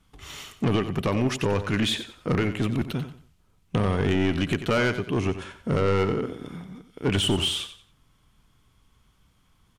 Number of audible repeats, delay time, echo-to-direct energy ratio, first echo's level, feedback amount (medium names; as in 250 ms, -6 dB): 3, 91 ms, -11.0 dB, -11.5 dB, 29%